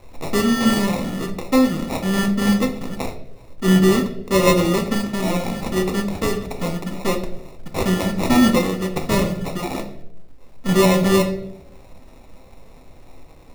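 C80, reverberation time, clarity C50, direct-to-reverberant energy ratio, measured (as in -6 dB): 13.5 dB, 0.80 s, 10.0 dB, 4.0 dB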